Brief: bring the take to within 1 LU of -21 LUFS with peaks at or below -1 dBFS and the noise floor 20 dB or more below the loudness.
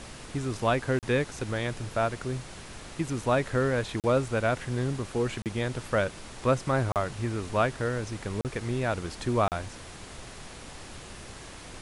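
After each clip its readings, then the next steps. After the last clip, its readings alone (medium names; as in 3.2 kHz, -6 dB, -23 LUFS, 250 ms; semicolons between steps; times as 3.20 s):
dropouts 6; longest dropout 38 ms; noise floor -45 dBFS; noise floor target -50 dBFS; loudness -29.5 LUFS; peak level -12.5 dBFS; loudness target -21.0 LUFS
-> interpolate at 0.99/4.00/5.42/6.92/8.41/9.48 s, 38 ms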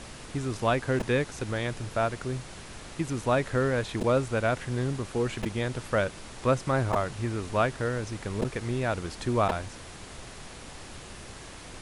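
dropouts 0; noise floor -45 dBFS; noise floor target -49 dBFS
-> noise print and reduce 6 dB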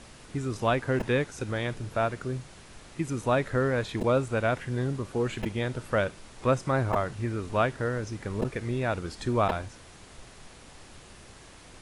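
noise floor -50 dBFS; loudness -29.5 LUFS; peak level -12.5 dBFS; loudness target -21.0 LUFS
-> trim +8.5 dB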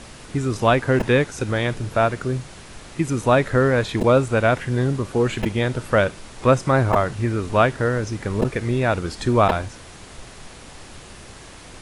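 loudness -21.0 LUFS; peak level -4.0 dBFS; noise floor -42 dBFS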